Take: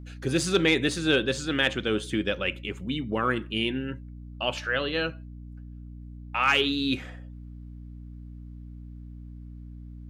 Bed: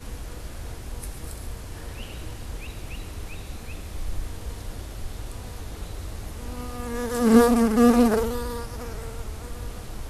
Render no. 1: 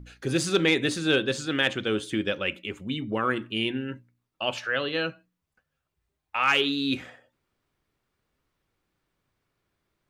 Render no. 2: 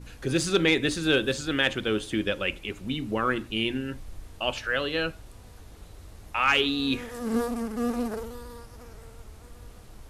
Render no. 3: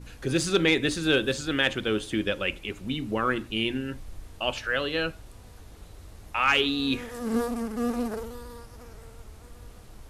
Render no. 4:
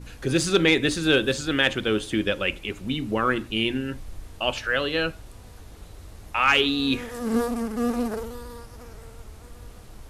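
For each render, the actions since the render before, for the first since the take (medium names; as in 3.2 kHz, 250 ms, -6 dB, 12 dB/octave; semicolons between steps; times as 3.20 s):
de-hum 60 Hz, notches 5
add bed -11.5 dB
no audible change
trim +3 dB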